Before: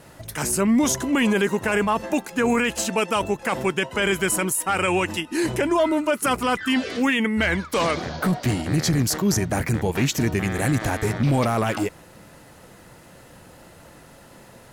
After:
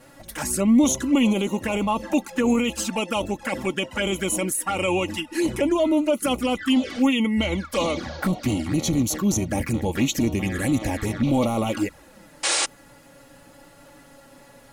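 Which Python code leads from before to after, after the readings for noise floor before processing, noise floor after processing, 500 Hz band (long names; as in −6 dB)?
−48 dBFS, −51 dBFS, −1.5 dB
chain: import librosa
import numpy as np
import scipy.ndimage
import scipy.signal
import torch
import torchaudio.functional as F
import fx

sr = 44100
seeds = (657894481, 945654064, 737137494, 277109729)

y = fx.env_flanger(x, sr, rest_ms=8.6, full_db=-18.5)
y = fx.spec_paint(y, sr, seeds[0], shape='noise', start_s=12.43, length_s=0.23, low_hz=290.0, high_hz=9700.0, level_db=-23.0)
y = y + 0.5 * np.pad(y, (int(3.6 * sr / 1000.0), 0))[:len(y)]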